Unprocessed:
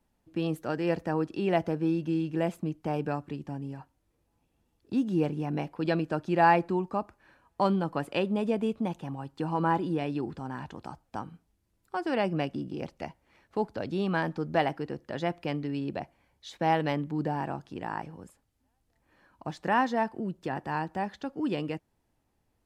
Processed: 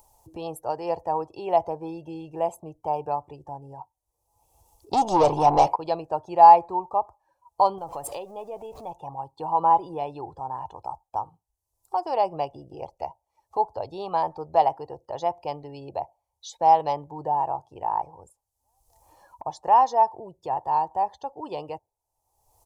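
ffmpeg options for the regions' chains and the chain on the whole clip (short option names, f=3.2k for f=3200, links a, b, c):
-filter_complex "[0:a]asettb=1/sr,asplit=3[a][b][c];[a]atrim=end=4.934[d];[b]atrim=start=4.93:end=5.76,asetpts=PTS-STARTPTS,afade=t=in:d=0.004:c=qsin,afade=t=out:st=0.826:d=0.004:c=qsin,lowshelf=f=390:g=9,asplit=2[e][f];[f]highpass=f=720:p=1,volume=25dB,asoftclip=type=tanh:threshold=-10dB[g];[e][g]amix=inputs=2:normalize=0,lowpass=f=6.1k:p=1,volume=-6dB[h];[c]atrim=start=5.756[i];[d][h]acrossfade=d=0.004:c1=hsin:c2=qsin[j];[j][i]acrossfade=d=0.004:c1=qsin:c2=hsin,asettb=1/sr,asplit=3[k][l][m];[k]atrim=end=7.784[n];[l]atrim=start=7.78:end=8.92,asetpts=PTS-STARTPTS,afade=t=in:d=0.004:c=qsin,afade=t=out:st=1.136:d=0.004:c=qsin,aeval=exprs='val(0)+0.5*0.0133*sgn(val(0))':c=same,equalizer=f=950:w=3.3:g=-5.5,acompressor=threshold=-31dB:ratio=5:attack=3.2:release=140:knee=1:detection=peak[o];[m]atrim=start=8.916[p];[n][o]acrossfade=d=0.004:c1=hsin:c2=qsin[q];[q][p]acrossfade=d=0.004:c1=qsin:c2=hsin,afftdn=nr=20:nf=-51,firequalizer=gain_entry='entry(100,0);entry(210,-19);entry(410,-1);entry(890,13);entry(1500,-15);entry(2300,-8);entry(6000,12);entry(10000,14)':delay=0.05:min_phase=1,acompressor=mode=upward:threshold=-37dB:ratio=2.5"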